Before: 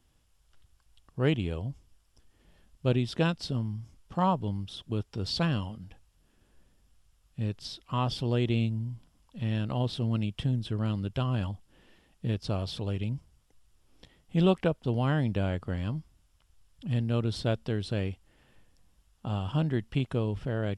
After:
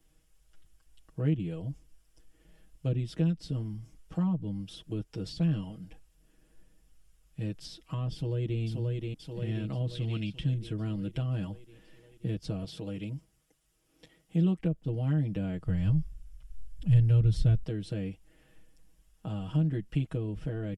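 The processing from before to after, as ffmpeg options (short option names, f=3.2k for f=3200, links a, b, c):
-filter_complex "[0:a]asplit=2[a][b];[b]afade=t=in:st=8.13:d=0.01,afade=t=out:st=8.6:d=0.01,aecho=0:1:530|1060|1590|2120|2650|3180|3710|4240:0.562341|0.337405|0.202443|0.121466|0.0728794|0.0437277|0.0262366|0.015742[c];[a][c]amix=inputs=2:normalize=0,asettb=1/sr,asplit=3[d][e][f];[d]atrim=end=9.954[g];[e]atrim=start=9.95:end=10.54,asetpts=PTS-STARTPTS,afade=t=in:d=0.004:c=qsin,afade=t=out:st=0.586:d=0.004:c=qsin,equalizer=f=3.3k:w=0.43:g=13.5[h];[f]atrim=start=10.536[i];[g][h]acrossfade=d=0.004:c1=hsin:c2=qsin[j];[j][i]acrossfade=d=0.004:c1=qsin:c2=hsin,asettb=1/sr,asplit=3[k][l][m];[k]atrim=end=12.644[n];[l]atrim=start=12.64:end=14.58,asetpts=PTS-STARTPTS,afade=t=in:d=0.004:c=qsin,afade=t=out:st=1.936:d=0.004:c=qsin,highpass=f=140:p=1[o];[m]atrim=start=14.576[p];[n][o]acrossfade=d=0.004:c1=hsin:c2=qsin[q];[q][p]acrossfade=d=0.004:c1=qsin:c2=hsin,asplit=3[r][s][t];[r]afade=t=out:st=15.65:d=0.02[u];[s]asubboost=boost=9:cutoff=97,afade=t=in:st=15.65:d=0.02,afade=t=out:st=17.63:d=0.02[v];[t]afade=t=in:st=17.63:d=0.02[w];[u][v][w]amix=inputs=3:normalize=0,aecho=1:1:6.3:0.98,acrossover=split=270[x][y];[y]acompressor=threshold=-38dB:ratio=6[z];[x][z]amix=inputs=2:normalize=0,equalizer=f=125:t=o:w=1:g=-5,equalizer=f=1k:t=o:w=1:g=-8,equalizer=f=4k:t=o:w=1:g=-6"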